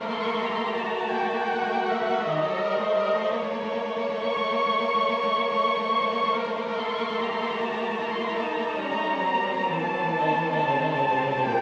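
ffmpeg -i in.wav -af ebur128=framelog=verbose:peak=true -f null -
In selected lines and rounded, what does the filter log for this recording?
Integrated loudness:
  I:         -25.6 LUFS
  Threshold: -35.6 LUFS
Loudness range:
  LRA:         2.0 LU
  Threshold: -45.7 LUFS
  LRA low:   -26.8 LUFS
  LRA high:  -24.9 LUFS
True peak:
  Peak:      -11.4 dBFS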